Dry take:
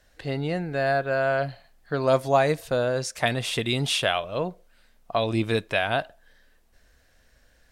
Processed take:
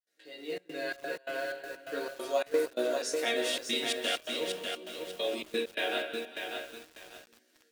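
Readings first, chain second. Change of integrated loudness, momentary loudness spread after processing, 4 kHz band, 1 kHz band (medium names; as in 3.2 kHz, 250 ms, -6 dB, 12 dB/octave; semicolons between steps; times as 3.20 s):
-8.0 dB, 15 LU, -3.5 dB, -12.5 dB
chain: gate with hold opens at -51 dBFS; peaking EQ 930 Hz -15 dB 1.4 oct; chord resonator D#3 minor, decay 0.21 s; on a send: two-band feedback delay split 410 Hz, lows 357 ms, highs 194 ms, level -13 dB; on the sum: spring tank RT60 1 s, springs 32/43 ms, chirp 55 ms, DRR 4 dB; in parallel at -4 dB: short-mantissa float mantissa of 2-bit; on the sum: steep high-pass 270 Hz 36 dB/octave; level rider gain up to 9.5 dB; chorus 0.39 Hz, delay 15.5 ms, depth 5.1 ms; trance gate "xxxxx.xx.x.xx" 130 bpm -24 dB; bit-crushed delay 595 ms, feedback 35%, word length 8-bit, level -4.5 dB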